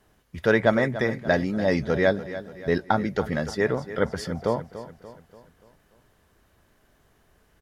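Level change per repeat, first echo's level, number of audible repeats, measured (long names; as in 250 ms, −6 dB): −6.5 dB, −13.5 dB, 4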